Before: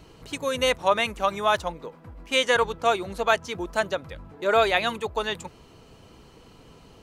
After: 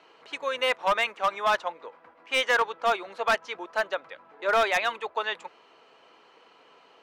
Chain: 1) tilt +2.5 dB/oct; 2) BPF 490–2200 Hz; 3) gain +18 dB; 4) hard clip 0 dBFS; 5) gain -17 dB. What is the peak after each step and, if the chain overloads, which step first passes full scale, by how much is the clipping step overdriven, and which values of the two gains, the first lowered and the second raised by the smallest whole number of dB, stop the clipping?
-5.0, -8.5, +9.5, 0.0, -17.0 dBFS; step 3, 9.5 dB; step 3 +8 dB, step 5 -7 dB

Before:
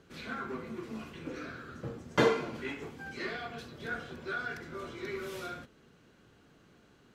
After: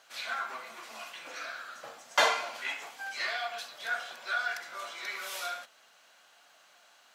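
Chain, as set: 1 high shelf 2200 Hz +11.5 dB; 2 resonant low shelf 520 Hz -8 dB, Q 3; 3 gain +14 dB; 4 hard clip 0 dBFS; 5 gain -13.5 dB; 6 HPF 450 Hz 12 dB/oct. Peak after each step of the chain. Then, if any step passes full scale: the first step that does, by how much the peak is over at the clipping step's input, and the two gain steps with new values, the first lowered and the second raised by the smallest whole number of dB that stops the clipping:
-7.5, -10.5, +3.5, 0.0, -13.5, -11.0 dBFS; step 3, 3.5 dB; step 3 +10 dB, step 5 -9.5 dB

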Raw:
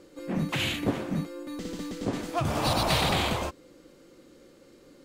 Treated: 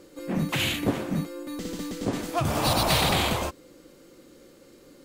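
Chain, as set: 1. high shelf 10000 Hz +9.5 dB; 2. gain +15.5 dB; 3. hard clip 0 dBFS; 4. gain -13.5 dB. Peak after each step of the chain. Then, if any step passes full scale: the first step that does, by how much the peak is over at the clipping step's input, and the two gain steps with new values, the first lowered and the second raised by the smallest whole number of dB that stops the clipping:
-12.0, +3.5, 0.0, -13.5 dBFS; step 2, 3.5 dB; step 2 +11.5 dB, step 4 -9.5 dB

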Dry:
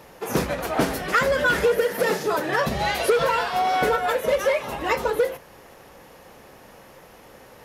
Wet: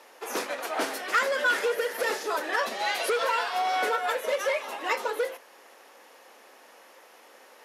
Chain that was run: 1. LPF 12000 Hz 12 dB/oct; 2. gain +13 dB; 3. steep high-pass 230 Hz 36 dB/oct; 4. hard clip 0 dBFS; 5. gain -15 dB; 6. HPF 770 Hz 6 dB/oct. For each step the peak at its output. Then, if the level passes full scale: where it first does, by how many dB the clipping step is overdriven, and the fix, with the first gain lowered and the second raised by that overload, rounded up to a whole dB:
-8.5, +4.5, +5.0, 0.0, -15.0, -13.0 dBFS; step 2, 5.0 dB; step 2 +8 dB, step 5 -10 dB

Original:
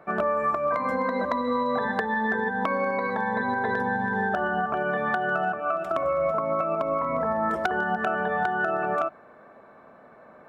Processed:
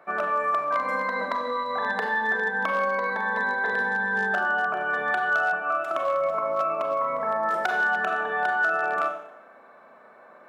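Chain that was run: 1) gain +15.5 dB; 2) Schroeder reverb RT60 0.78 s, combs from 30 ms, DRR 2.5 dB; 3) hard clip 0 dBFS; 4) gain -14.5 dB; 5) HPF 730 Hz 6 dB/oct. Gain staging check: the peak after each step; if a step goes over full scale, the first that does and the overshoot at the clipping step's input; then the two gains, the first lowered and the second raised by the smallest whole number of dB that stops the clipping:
+0.5, +4.0, 0.0, -14.5, -12.0 dBFS; step 1, 4.0 dB; step 1 +11.5 dB, step 4 -10.5 dB

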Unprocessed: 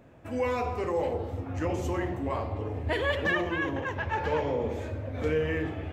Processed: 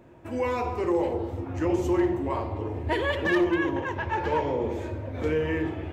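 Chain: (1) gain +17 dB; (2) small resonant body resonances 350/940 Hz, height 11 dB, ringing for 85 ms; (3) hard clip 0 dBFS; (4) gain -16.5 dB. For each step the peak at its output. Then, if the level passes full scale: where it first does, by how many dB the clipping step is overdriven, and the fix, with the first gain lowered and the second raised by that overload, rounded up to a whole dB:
+0.5, +4.0, 0.0, -16.5 dBFS; step 1, 4.0 dB; step 1 +13 dB, step 4 -12.5 dB

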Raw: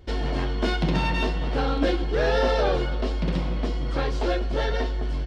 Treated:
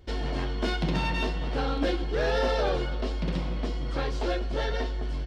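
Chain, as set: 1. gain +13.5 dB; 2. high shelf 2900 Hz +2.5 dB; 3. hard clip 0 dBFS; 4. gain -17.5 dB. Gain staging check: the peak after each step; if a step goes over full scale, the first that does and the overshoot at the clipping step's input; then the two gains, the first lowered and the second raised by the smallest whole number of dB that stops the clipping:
+3.5, +3.5, 0.0, -17.5 dBFS; step 1, 3.5 dB; step 1 +9.5 dB, step 4 -13.5 dB

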